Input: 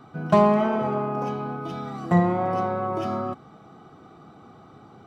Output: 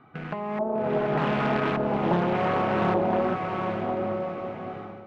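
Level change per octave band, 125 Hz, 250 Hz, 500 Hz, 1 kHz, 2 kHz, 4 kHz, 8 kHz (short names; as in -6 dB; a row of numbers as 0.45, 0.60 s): -2.5 dB, -2.0 dB, 0.0 dB, -1.0 dB, +5.0 dB, +4.5 dB, n/a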